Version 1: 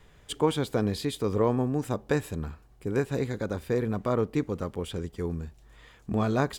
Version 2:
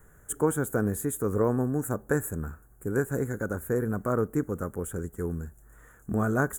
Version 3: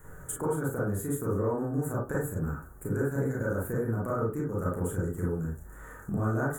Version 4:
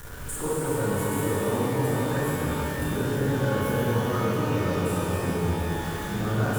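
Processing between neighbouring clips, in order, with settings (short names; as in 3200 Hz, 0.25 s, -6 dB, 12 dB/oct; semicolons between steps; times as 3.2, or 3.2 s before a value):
EQ curve 420 Hz 0 dB, 1000 Hz -4 dB, 1500 Hz +7 dB, 2400 Hz -17 dB, 4700 Hz -27 dB, 6800 Hz +5 dB, 12000 Hz +14 dB
compressor 5:1, threshold -37 dBFS, peak gain reduction 16.5 dB; reverb RT60 0.30 s, pre-delay 27 ms, DRR -5.5 dB; gain +2.5 dB
zero-crossing step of -34 dBFS; shimmer reverb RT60 3.9 s, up +12 st, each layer -8 dB, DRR -5 dB; gain -4 dB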